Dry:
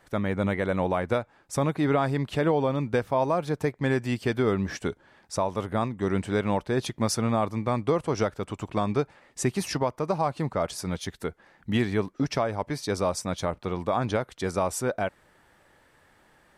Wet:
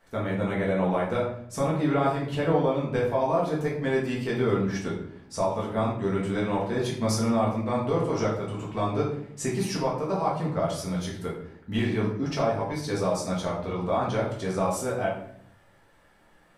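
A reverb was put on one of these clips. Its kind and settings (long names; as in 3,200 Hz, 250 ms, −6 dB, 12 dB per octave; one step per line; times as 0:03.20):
rectangular room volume 120 cubic metres, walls mixed, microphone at 1.6 metres
level −7 dB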